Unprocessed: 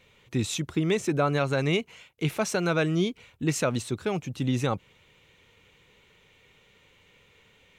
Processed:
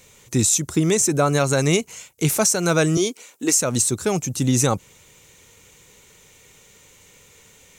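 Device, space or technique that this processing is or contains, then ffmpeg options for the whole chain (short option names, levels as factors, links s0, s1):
over-bright horn tweeter: -filter_complex "[0:a]asettb=1/sr,asplit=3[s0][s1][s2];[s0]atrim=end=2.974[s3];[s1]atrim=start=2.97:end=3.55,asetpts=PTS-STARTPTS,afade=t=in:d=0.004:c=qsin,afade=t=out:st=0.576:d=0.004:c=qsin,highpass=f=270:w=0.5412,highpass=f=270:w=1.3066[s4];[s2]atrim=start=3.546[s5];[s3][s4]acrossfade=d=0.004:c1=hsin:c2=qsin[s6];[s6][s5]acrossfade=d=0.004:c1=qsin:c2=hsin,highshelf=f=4700:t=q:w=1.5:g=14,alimiter=limit=0.188:level=0:latency=1:release=228,volume=2.24"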